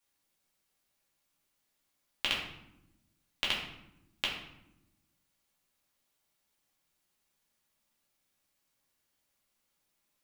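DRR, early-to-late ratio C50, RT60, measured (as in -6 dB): -5.0 dB, 4.5 dB, 0.90 s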